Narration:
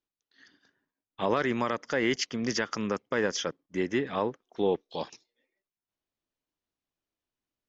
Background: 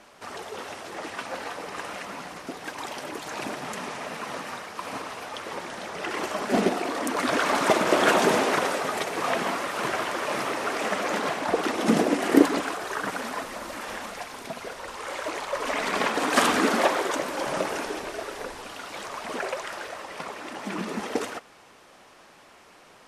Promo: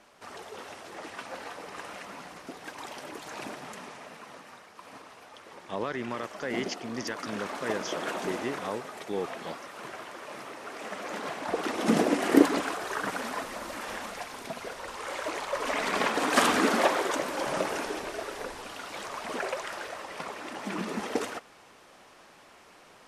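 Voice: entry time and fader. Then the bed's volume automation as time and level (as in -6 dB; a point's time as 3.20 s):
4.50 s, -6.0 dB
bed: 3.43 s -6 dB
4.41 s -13.5 dB
10.59 s -13.5 dB
12.01 s -2 dB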